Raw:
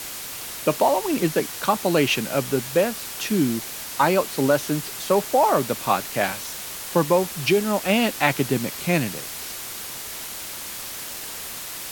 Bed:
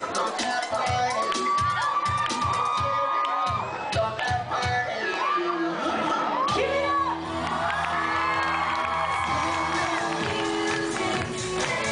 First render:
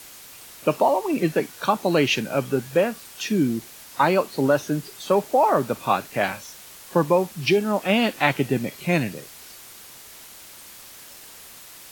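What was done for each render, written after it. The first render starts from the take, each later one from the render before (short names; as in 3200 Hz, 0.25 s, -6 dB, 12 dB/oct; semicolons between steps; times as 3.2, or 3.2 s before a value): noise print and reduce 10 dB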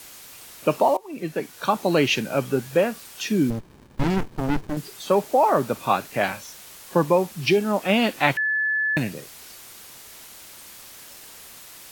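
0.97–1.78 fade in, from -20.5 dB; 3.5–4.77 running maximum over 65 samples; 8.37–8.97 bleep 1730 Hz -20 dBFS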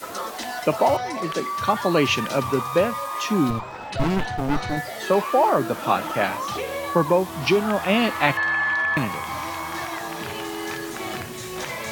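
add bed -4.5 dB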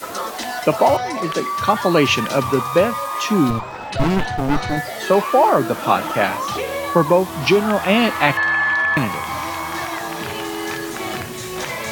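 gain +4.5 dB; limiter -2 dBFS, peak gain reduction 1 dB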